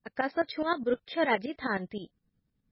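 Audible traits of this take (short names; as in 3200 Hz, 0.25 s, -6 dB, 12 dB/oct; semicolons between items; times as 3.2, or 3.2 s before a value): tremolo saw up 9.6 Hz, depth 80%; MP3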